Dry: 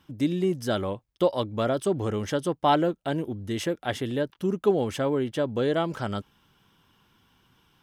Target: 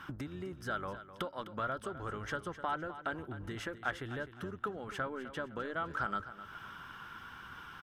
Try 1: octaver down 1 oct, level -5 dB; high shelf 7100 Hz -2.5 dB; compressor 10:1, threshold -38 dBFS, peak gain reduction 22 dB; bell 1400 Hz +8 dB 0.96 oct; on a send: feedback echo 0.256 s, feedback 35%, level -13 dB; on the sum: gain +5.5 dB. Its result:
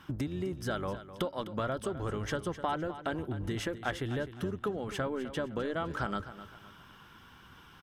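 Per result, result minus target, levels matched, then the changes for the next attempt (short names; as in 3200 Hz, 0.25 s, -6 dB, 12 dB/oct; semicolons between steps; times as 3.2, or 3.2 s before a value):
compressor: peak gain reduction -8 dB; 1000 Hz band -4.0 dB
change: compressor 10:1, threshold -47 dBFS, peak gain reduction 30 dB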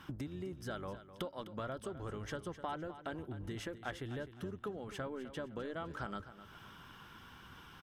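1000 Hz band -3.5 dB
change: bell 1400 Hz +18.5 dB 0.96 oct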